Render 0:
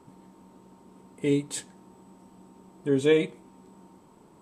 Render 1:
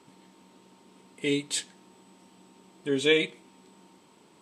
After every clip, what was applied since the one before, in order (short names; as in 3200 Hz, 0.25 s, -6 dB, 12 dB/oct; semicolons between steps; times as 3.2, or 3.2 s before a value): weighting filter D; gain -2.5 dB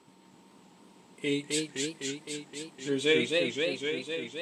warbling echo 0.257 s, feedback 75%, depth 172 cents, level -3 dB; gain -3 dB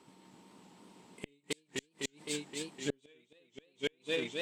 flipped gate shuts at -22 dBFS, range -37 dB; added harmonics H 5 -33 dB, 7 -25 dB, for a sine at -21 dBFS; gain +1.5 dB